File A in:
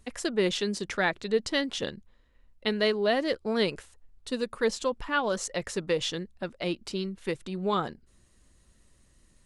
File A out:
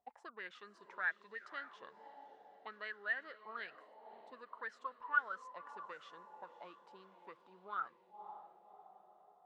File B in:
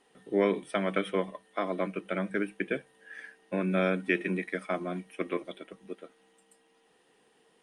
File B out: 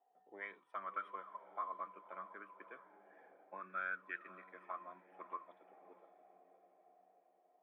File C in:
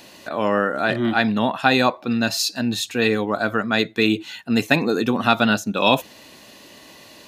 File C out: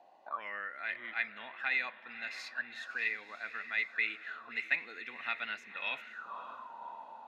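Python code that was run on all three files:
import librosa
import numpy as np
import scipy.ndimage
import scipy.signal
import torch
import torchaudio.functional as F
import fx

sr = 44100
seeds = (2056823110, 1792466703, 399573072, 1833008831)

y = fx.echo_diffused(x, sr, ms=567, feedback_pct=51, wet_db=-12.5)
y = fx.auto_wah(y, sr, base_hz=720.0, top_hz=2100.0, q=13.0, full_db=-18.5, direction='up')
y = F.gain(torch.from_numpy(y), 2.0).numpy()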